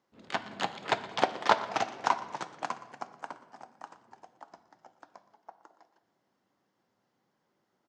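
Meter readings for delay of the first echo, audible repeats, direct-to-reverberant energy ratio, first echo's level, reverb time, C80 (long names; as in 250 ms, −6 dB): 119 ms, 1, 10.5 dB, −18.0 dB, 1.3 s, 14.0 dB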